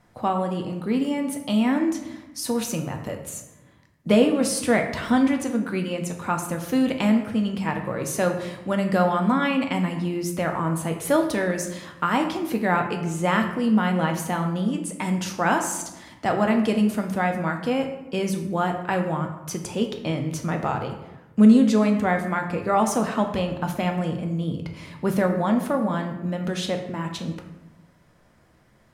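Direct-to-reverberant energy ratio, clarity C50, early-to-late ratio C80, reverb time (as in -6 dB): 3.5 dB, 8.0 dB, 10.0 dB, 1.0 s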